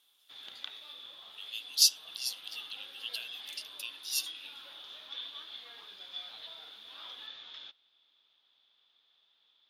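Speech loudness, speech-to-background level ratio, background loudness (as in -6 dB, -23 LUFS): -31.5 LUFS, 13.5 dB, -45.0 LUFS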